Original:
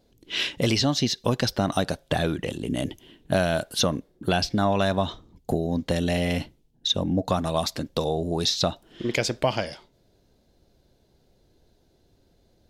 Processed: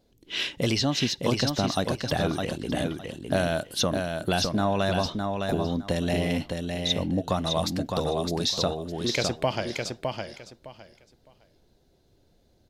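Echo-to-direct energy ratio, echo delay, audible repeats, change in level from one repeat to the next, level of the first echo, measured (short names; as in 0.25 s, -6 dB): -4.5 dB, 0.61 s, 3, -14.0 dB, -4.5 dB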